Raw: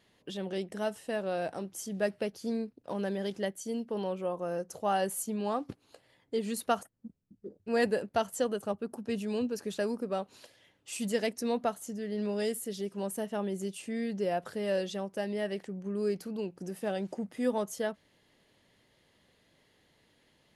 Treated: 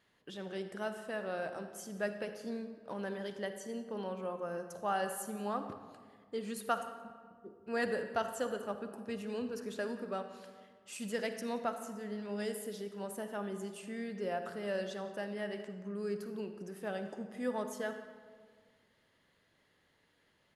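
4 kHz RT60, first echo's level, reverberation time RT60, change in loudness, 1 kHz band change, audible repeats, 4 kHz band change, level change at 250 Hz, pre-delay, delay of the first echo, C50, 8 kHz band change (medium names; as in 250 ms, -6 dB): 1.0 s, -21.0 dB, 1.7 s, -5.5 dB, -3.5 dB, 1, -6.0 dB, -6.5 dB, 40 ms, 176 ms, 8.0 dB, -7.0 dB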